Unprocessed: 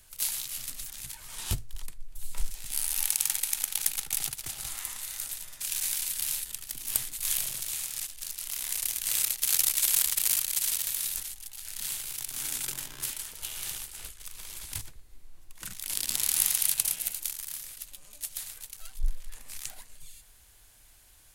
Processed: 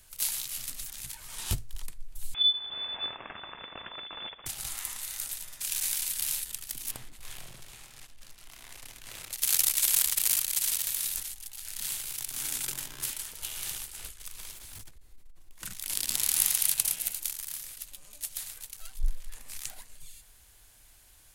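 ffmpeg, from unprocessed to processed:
-filter_complex "[0:a]asettb=1/sr,asplit=3[s0][s1][s2];[s0]atrim=end=2.344[s3];[s1]atrim=start=2.34:end=4.46,asetpts=PTS-STARTPTS,afade=t=in:d=0.004:c=qsin,afade=t=out:st=2.116:d=0.004:c=qsin,lowpass=f=3000:t=q:w=0.5098,lowpass=f=3000:t=q:w=0.6013,lowpass=f=3000:t=q:w=0.9,lowpass=f=3000:t=q:w=2.563,afreqshift=-3500[s4];[s2]atrim=start=4.456[s5];[s3][s4]acrossfade=d=0.004:c1=hsin:c2=qsin[s6];[s6][s5]acrossfade=d=0.004:c1=qsin:c2=hsin,asettb=1/sr,asplit=3[s7][s8][s9];[s7]atrim=end=6.914[s10];[s8]atrim=start=6.91:end=9.33,asetpts=PTS-STARTPTS,afade=t=in:d=0.004:c=qsin,afade=t=out:st=2.416:d=0.004:c=qsin,lowpass=f=1000:p=1[s11];[s9]atrim=start=9.326[s12];[s10][s11]acrossfade=d=0.004:c1=hsin:c2=qsin[s13];[s13][s12]acrossfade=d=0.004:c1=qsin:c2=hsin,asettb=1/sr,asplit=3[s14][s15][s16];[s14]atrim=end=14.514[s17];[s15]atrim=start=14.51:end=15.63,asetpts=PTS-STARTPTS,afade=t=in:d=0.004:c=qsin,afade=t=out:st=1.116:d=0.004:c=qsin,aeval=exprs='(tanh(126*val(0)+0.2)-tanh(0.2))/126':c=same[s18];[s16]atrim=start=15.626[s19];[s17][s18]acrossfade=d=0.004:c1=hsin:c2=qsin[s20];[s20][s19]acrossfade=d=0.004:c1=qsin:c2=hsin"

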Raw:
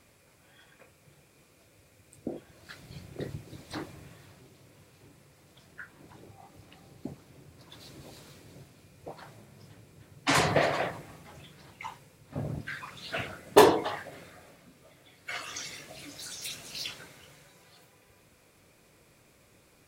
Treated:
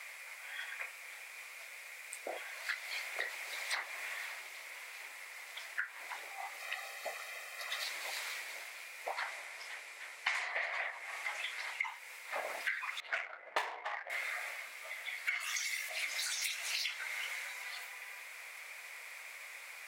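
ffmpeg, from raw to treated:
-filter_complex "[0:a]asettb=1/sr,asplit=3[s0][s1][s2];[s0]atrim=end=2.334[s3];[s1]atrim=start=2.33:end=3.89,asetpts=PTS-STARTPTS,afade=t=in:d=0.004:c=qsin,afade=t=out:st=1.556:d=0.004:c=qsin,highpass=f=360:w=0.5412,highpass=f=360:w=1.3066[s4];[s2]atrim=start=3.886[s5];[s3][s4]acrossfade=d=0.004:c1=hsin:c2=qsin[s6];[s6][s5]acrossfade=d=0.004:c1=qsin:c2=hsin,asettb=1/sr,asplit=3[s7][s8][s9];[s7]atrim=end=6.594[s10];[s8]atrim=start=6.59:end=7.84,asetpts=PTS-STARTPTS,afade=t=in:d=0.004:c=qsin,afade=t=out:st=1.246:d=0.004:c=qsin,aecho=1:1:1.6:0.89,atrim=end_sample=55125[s11];[s9]atrim=start=7.836[s12];[s10][s11]acrossfade=d=0.004:c1=hsin:c2=qsin[s13];[s13][s12]acrossfade=d=0.004:c1=qsin:c2=hsin,asettb=1/sr,asplit=3[s14][s15][s16];[s14]atrim=end=9.134[s17];[s15]atrim=start=9.13:end=11.85,asetpts=PTS-STARTPTS,afade=t=in:d=0.004:c=qsin,afade=t=out:st=2.716:d=0.004:c=qsin,lowpass=11000[s18];[s16]atrim=start=11.846[s19];[s17][s18]acrossfade=d=0.004:c1=hsin:c2=qsin[s20];[s20][s19]acrossfade=d=0.004:c1=qsin:c2=hsin,asettb=1/sr,asplit=3[s21][s22][s23];[s21]atrim=end=13.004[s24];[s22]atrim=start=13:end=14.1,asetpts=PTS-STARTPTS,afade=t=in:d=0.004:c=qsin,afade=t=out:st=1.096:d=0.004:c=qsin,adynamicsmooth=sensitivity=3.5:basefreq=640[s25];[s23]atrim=start=14.096[s26];[s24][s25]acrossfade=d=0.004:c1=hsin:c2=qsin[s27];[s27][s26]acrossfade=d=0.004:c1=qsin:c2=hsin,asettb=1/sr,asplit=3[s28][s29][s30];[s28]atrim=end=15.404[s31];[s29]atrim=start=15.4:end=15.89,asetpts=PTS-STARTPTS,afade=t=in:d=0.004:c=qsin,afade=t=out:st=0.486:d=0.004:c=qsin,aemphasis=mode=production:type=50kf[s32];[s30]atrim=start=15.886[s33];[s31][s32]acrossfade=d=0.004:c1=hsin:c2=qsin[s34];[s34][s33]acrossfade=d=0.004:c1=qsin:c2=hsin,highpass=f=720:w=0.5412,highpass=f=720:w=1.3066,equalizer=f=2100:w=2.6:g=13.5,acompressor=threshold=0.00631:ratio=16,volume=3.16"

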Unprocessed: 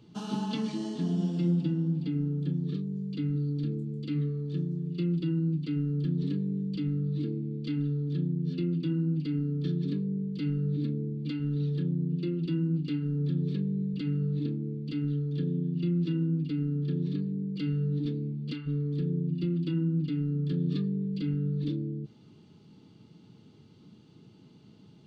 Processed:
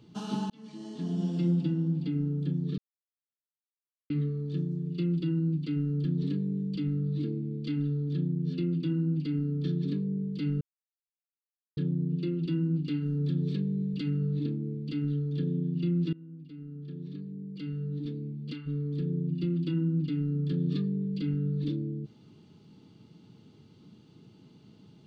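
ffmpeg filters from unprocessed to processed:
-filter_complex "[0:a]asettb=1/sr,asplit=3[s0][s1][s2];[s0]atrim=end=12.954[s3];[s1]atrim=start=12.95:end=14.1,asetpts=PTS-STARTPTS,afade=t=in:d=0.004:c=qsin,afade=t=out:st=1.146:d=0.004:c=qsin,highshelf=f=3700:g=6[s4];[s2]atrim=start=14.096[s5];[s3][s4]acrossfade=d=0.004:c1=hsin:c2=qsin[s6];[s6][s5]acrossfade=d=0.004:c1=qsin:c2=hsin,asplit=7[s7][s8][s9][s10][s11][s12][s13];[s7]atrim=end=0.5,asetpts=PTS-STARTPTS,afade=t=out:st=0.496:d=0.004:c=hsin[s14];[s8]atrim=start=0.5:end=2.78,asetpts=PTS-STARTPTS,afade=t=in:d=0.84,afade=t=out:st=2.276:d=0.004:c=hsin[s15];[s9]atrim=start=2.78:end=4.1,asetpts=PTS-STARTPTS,volume=0[s16];[s10]atrim=start=4.1:end=10.61,asetpts=PTS-STARTPTS,afade=t=in:d=0.004:c=hsin,afade=t=out:st=6.506:d=0.004:c=hsin[s17];[s11]atrim=start=10.61:end=11.77,asetpts=PTS-STARTPTS,volume=0[s18];[s12]atrim=start=11.77:end=16.13,asetpts=PTS-STARTPTS,afade=t=in:d=0.004:c=hsin,afade=t=out:st=4.356:d=0.004:c=hsin:silence=0.0841395[s19];[s13]atrim=start=16.13,asetpts=PTS-STARTPTS,afade=t=in:d=3.4:silence=0.0841395[s20];[s14][s15][s16][s17][s18][s19][s20]concat=n=7:v=0:a=1"

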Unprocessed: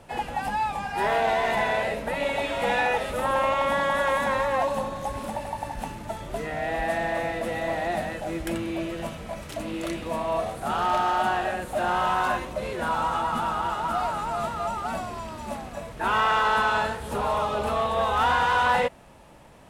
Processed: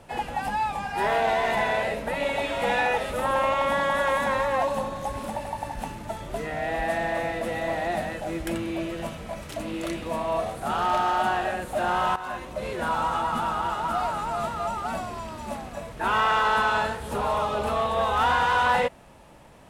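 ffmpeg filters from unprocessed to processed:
-filter_complex "[0:a]asplit=2[s0][s1];[s0]atrim=end=12.16,asetpts=PTS-STARTPTS,afade=t=out:st=12.156:d=0.004:c=hsin:silence=0.188365[s2];[s1]atrim=start=12.16,asetpts=PTS-STARTPTS,afade=t=in:d=0.53:silence=0.188365[s3];[s2][s3]concat=n=2:v=0:a=1"

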